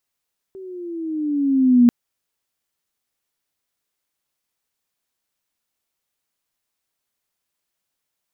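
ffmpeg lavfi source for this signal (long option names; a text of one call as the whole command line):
ffmpeg -f lavfi -i "aevalsrc='pow(10,(-7.5+26*(t/1.34-1))/20)*sin(2*PI*387*1.34/(-8.5*log(2)/12)*(exp(-8.5*log(2)/12*t/1.34)-1))':duration=1.34:sample_rate=44100" out.wav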